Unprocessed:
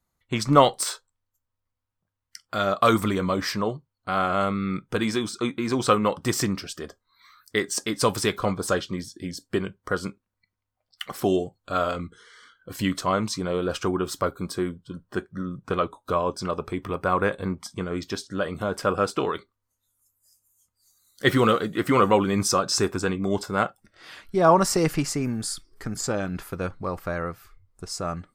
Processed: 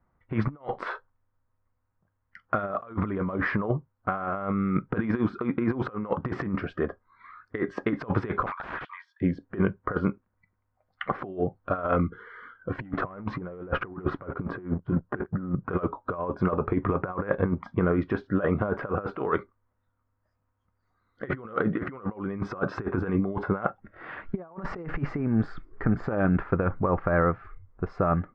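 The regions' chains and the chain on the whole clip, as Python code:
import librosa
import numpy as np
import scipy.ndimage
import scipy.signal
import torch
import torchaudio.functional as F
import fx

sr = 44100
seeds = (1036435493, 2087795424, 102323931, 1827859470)

y = fx.chain(x, sr, fx.cheby1_highpass(hz=920.0, order=6),
    fx.peak_eq(hz=13000.0, db=-14.0, octaves=0.37),
    fx.overflow_wrap(gain_db=30.5), at=(8.46, 9.21))
y = fx.chain(y, sr, fx.leveller(passes=2),
    fx.high_shelf(hz=3200.0, db=-11.0), at=(12.78, 15.55))
y = scipy.signal.sosfilt(scipy.signal.butter(4, 1800.0, 'lowpass', fs=sr, output='sos'), y)
y = fx.over_compress(y, sr, threshold_db=-29.0, ratio=-0.5)
y = F.gain(torch.from_numpy(y), 2.5).numpy()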